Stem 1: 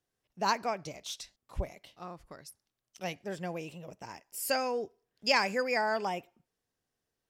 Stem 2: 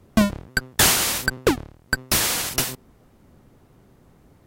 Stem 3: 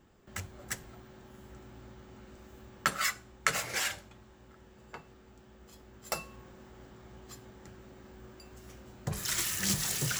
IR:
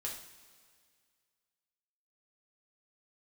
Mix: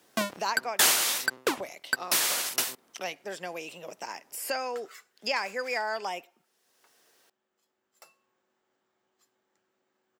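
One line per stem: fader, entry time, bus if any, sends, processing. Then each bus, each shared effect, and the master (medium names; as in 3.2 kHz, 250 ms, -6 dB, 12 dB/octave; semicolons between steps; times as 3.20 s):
+2.0 dB, 0.00 s, no send, three bands compressed up and down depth 70%
-4.5 dB, 0.00 s, no send, none
-19.0 dB, 1.90 s, no send, none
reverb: none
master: high-pass 280 Hz 12 dB/octave; bass shelf 430 Hz -8 dB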